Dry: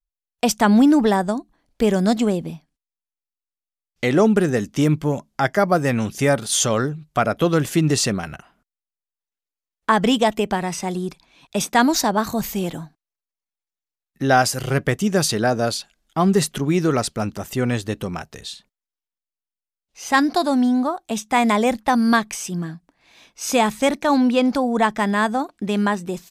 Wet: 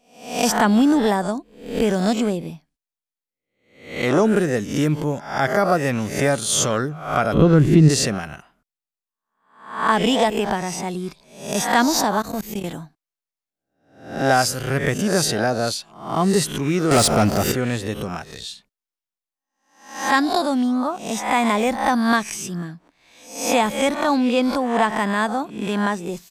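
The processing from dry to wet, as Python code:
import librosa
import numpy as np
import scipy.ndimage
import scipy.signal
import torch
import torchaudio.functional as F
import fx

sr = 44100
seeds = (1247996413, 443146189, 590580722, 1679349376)

y = fx.spec_swells(x, sr, rise_s=0.54)
y = fx.riaa(y, sr, side='playback', at=(7.33, 7.88), fade=0.02)
y = fx.level_steps(y, sr, step_db=22, at=(12.21, 12.64))
y = fx.leveller(y, sr, passes=3, at=(16.91, 17.52))
y = fx.pre_swell(y, sr, db_per_s=120.0)
y = F.gain(torch.from_numpy(y), -2.5).numpy()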